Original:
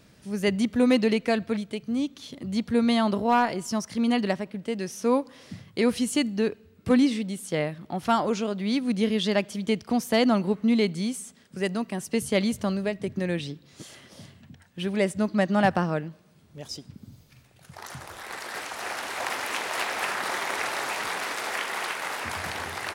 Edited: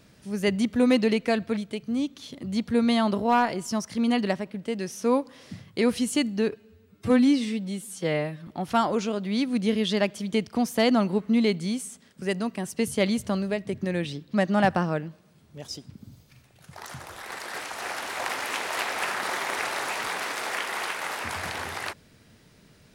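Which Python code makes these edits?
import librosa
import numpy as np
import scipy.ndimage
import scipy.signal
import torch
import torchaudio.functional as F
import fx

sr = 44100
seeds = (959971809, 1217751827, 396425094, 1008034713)

y = fx.edit(x, sr, fx.stretch_span(start_s=6.51, length_s=1.31, factor=1.5),
    fx.cut(start_s=13.68, length_s=1.66), tone=tone)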